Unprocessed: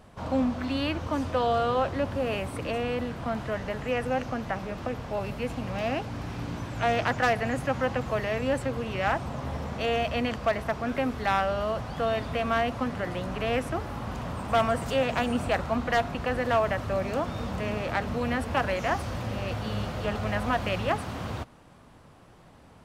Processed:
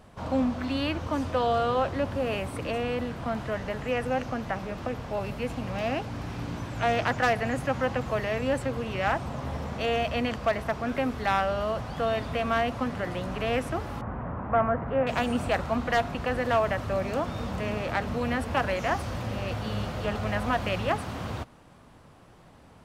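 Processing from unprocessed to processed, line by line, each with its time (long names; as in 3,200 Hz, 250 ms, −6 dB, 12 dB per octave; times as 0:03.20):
0:14.01–0:15.07: low-pass filter 1,800 Hz 24 dB per octave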